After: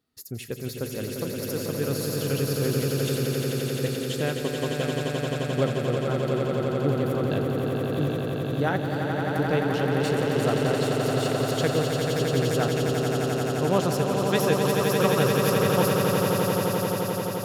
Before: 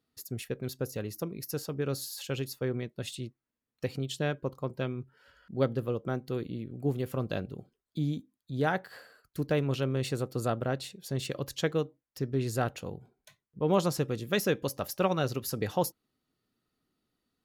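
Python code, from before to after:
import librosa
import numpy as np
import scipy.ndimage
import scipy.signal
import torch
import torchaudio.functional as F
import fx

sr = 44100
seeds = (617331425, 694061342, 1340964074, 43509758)

y = fx.echo_swell(x, sr, ms=87, loudest=8, wet_db=-6)
y = F.gain(torch.from_numpy(y), 2.0).numpy()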